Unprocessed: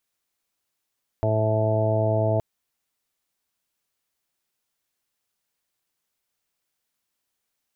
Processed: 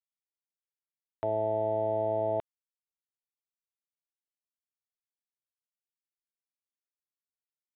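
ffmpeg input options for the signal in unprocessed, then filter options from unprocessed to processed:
-f lavfi -i "aevalsrc='0.075*sin(2*PI*109*t)+0.0188*sin(2*PI*218*t)+0.0266*sin(2*PI*327*t)+0.0299*sin(2*PI*436*t)+0.0266*sin(2*PI*545*t)+0.0708*sin(2*PI*654*t)+0.00891*sin(2*PI*763*t)+0.0188*sin(2*PI*872*t)':d=1.17:s=44100"
-af "highpass=f=860:p=1,aeval=exprs='sgn(val(0))*max(abs(val(0))-0.00119,0)':c=same,aresample=8000,aresample=44100"

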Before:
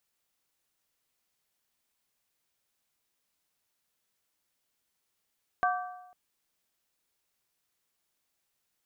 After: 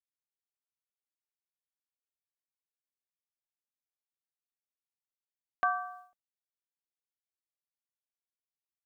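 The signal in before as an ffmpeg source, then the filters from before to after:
-f lavfi -i "aevalsrc='0.0631*pow(10,-3*t/0.97)*sin(2*PI*727*t)+0.0501*pow(10,-3*t/0.768)*sin(2*PI*1158.8*t)+0.0398*pow(10,-3*t/0.664)*sin(2*PI*1552.9*t)':d=0.5:s=44100"
-af "agate=range=-33dB:threshold=-46dB:ratio=3:detection=peak,aecho=1:1:3.4:0.33"

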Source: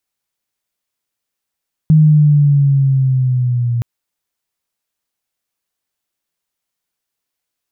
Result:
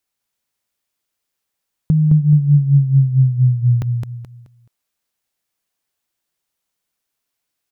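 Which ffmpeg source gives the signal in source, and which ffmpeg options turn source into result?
-f lavfi -i "aevalsrc='pow(10,(-4.5-9*t/1.92)/20)*sin(2*PI*157*1.92/(-5*log(2)/12)*(exp(-5*log(2)/12*t/1.92)-1))':d=1.92:s=44100"
-af "acompressor=threshold=-12dB:ratio=6,aecho=1:1:214|428|642|856:0.631|0.196|0.0606|0.0188"

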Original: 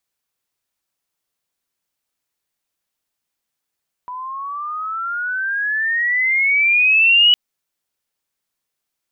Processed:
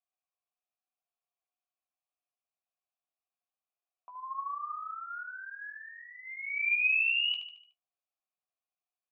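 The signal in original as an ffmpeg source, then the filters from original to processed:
-f lavfi -i "aevalsrc='pow(10,(-8+18.5*(t/3.26-1))/20)*sin(2*PI*986*3.26/(19*log(2)/12)*(exp(19*log(2)/12*t/3.26)-1))':d=3.26:s=44100"
-filter_complex "[0:a]asplit=3[a][b][c];[a]bandpass=f=730:t=q:w=8,volume=0dB[d];[b]bandpass=f=1.09k:t=q:w=8,volume=-6dB[e];[c]bandpass=f=2.44k:t=q:w=8,volume=-9dB[f];[d][e][f]amix=inputs=3:normalize=0,flanger=delay=7.1:depth=6.5:regen=39:speed=0.88:shape=sinusoidal,asplit=2[g][h];[h]aecho=0:1:74|148|222|296|370:0.398|0.187|0.0879|0.0413|0.0194[i];[g][i]amix=inputs=2:normalize=0"

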